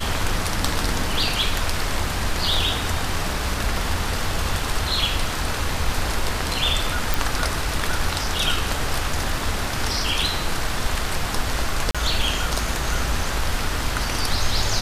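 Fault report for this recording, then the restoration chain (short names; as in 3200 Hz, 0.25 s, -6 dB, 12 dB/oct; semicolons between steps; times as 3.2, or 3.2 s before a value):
7.14 pop
11.91–11.95 gap 36 ms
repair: de-click; interpolate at 11.91, 36 ms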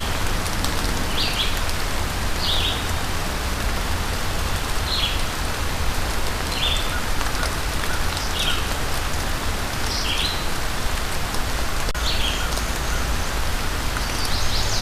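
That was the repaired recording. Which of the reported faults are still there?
none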